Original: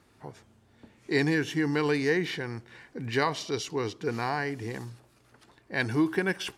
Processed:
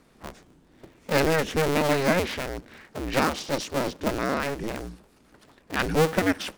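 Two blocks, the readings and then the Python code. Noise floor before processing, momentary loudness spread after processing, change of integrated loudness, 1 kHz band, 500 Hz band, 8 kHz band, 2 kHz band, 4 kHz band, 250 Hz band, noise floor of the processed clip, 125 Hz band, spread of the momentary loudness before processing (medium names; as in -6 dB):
-63 dBFS, 17 LU, +3.5 dB, +6.0 dB, +5.0 dB, +7.5 dB, +2.0 dB, +4.0 dB, +1.5 dB, -59 dBFS, +2.5 dB, 16 LU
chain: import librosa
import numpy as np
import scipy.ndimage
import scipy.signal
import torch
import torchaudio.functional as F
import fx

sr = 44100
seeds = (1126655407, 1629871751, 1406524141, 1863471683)

y = fx.cycle_switch(x, sr, every=2, mode='inverted')
y = fx.peak_eq(y, sr, hz=270.0, db=7.0, octaves=1.2)
y = y * 10.0 ** (1.5 / 20.0)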